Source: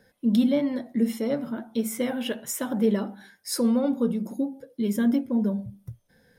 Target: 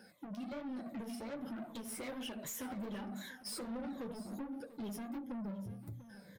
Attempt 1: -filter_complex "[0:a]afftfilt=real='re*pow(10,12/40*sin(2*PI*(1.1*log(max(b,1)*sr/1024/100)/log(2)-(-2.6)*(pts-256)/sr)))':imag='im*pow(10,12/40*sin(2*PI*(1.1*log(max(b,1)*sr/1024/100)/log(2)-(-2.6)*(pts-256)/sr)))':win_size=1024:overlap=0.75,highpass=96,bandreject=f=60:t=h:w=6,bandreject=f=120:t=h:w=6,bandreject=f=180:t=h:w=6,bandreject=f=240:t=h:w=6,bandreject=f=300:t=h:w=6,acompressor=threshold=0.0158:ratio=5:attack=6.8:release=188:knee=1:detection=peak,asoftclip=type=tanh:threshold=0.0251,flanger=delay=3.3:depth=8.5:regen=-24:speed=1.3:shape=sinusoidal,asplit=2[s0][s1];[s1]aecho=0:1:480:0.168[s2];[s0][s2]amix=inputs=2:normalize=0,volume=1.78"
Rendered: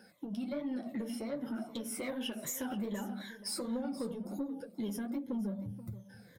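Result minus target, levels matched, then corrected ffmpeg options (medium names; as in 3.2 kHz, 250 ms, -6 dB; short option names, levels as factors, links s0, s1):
saturation: distortion -10 dB; echo 214 ms early
-filter_complex "[0:a]afftfilt=real='re*pow(10,12/40*sin(2*PI*(1.1*log(max(b,1)*sr/1024/100)/log(2)-(-2.6)*(pts-256)/sr)))':imag='im*pow(10,12/40*sin(2*PI*(1.1*log(max(b,1)*sr/1024/100)/log(2)-(-2.6)*(pts-256)/sr)))':win_size=1024:overlap=0.75,highpass=96,bandreject=f=60:t=h:w=6,bandreject=f=120:t=h:w=6,bandreject=f=180:t=h:w=6,bandreject=f=240:t=h:w=6,bandreject=f=300:t=h:w=6,acompressor=threshold=0.0158:ratio=5:attack=6.8:release=188:knee=1:detection=peak,asoftclip=type=tanh:threshold=0.00794,flanger=delay=3.3:depth=8.5:regen=-24:speed=1.3:shape=sinusoidal,asplit=2[s0][s1];[s1]aecho=0:1:694:0.168[s2];[s0][s2]amix=inputs=2:normalize=0,volume=1.78"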